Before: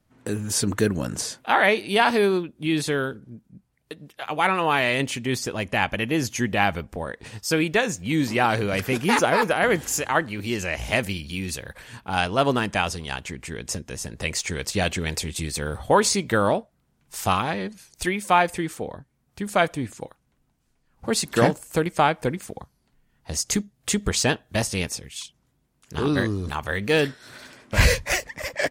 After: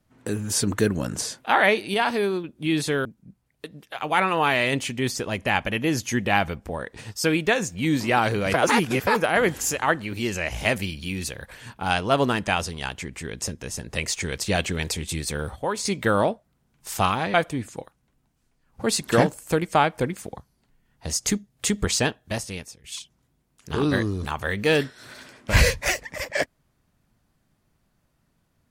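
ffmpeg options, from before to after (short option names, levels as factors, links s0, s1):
-filter_complex "[0:a]asplit=10[s0][s1][s2][s3][s4][s5][s6][s7][s8][s9];[s0]atrim=end=1.942[s10];[s1]atrim=start=1.938:end=2.442,asetpts=PTS-STARTPTS,volume=0.631[s11];[s2]atrim=start=2.438:end=3.052[s12];[s3]atrim=start=3.318:end=8.812[s13];[s4]atrim=start=8.808:end=9.342,asetpts=PTS-STARTPTS,areverse[s14];[s5]atrim=start=9.338:end=15.83,asetpts=PTS-STARTPTS,afade=t=out:st=6.102:d=0.39:c=log:silence=0.354813[s15];[s6]atrim=start=15.83:end=16.12,asetpts=PTS-STARTPTS,volume=0.355[s16];[s7]atrim=start=16.12:end=17.612,asetpts=PTS-STARTPTS,afade=t=in:d=0.39:c=log:silence=0.354813[s17];[s8]atrim=start=19.578:end=25.08,asetpts=PTS-STARTPTS,afade=t=out:st=4.542:d=0.96:silence=0.141254[s18];[s9]atrim=start=25.08,asetpts=PTS-STARTPTS,afade=t=in:d=0.004:c=hsin:silence=0.141254[s19];[s10][s11]acrossfade=d=0.004:c1=hsin:c2=hsin[s20];[s20][s12]acrossfade=d=0.004:c1=hsin:c2=hsin[s21];[s21][s13]acrossfade=d=0.004:c1=hsin:c2=hsin[s22];[s22][s14]acrossfade=d=0.004:c1=hsin:c2=hsin[s23];[s15][s16][s17]concat=n=3:v=0:a=1[s24];[s23][s24]acrossfade=d=0.004:c1=hsin:c2=hsin[s25];[s18][s19]concat=n=2:v=0:a=1[s26];[s25][s26]acrossfade=d=0.004:c1=hsin:c2=hsin"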